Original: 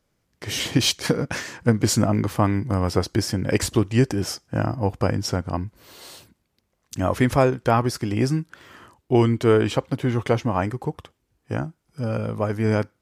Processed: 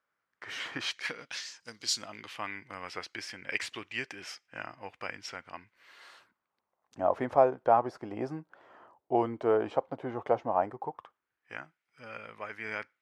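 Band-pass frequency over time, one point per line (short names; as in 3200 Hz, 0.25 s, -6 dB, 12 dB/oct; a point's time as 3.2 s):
band-pass, Q 2.3
0.84 s 1400 Hz
1.56 s 5700 Hz
2.53 s 2300 Hz
5.64 s 2300 Hz
7.02 s 720 Hz
10.75 s 720 Hz
11.53 s 2100 Hz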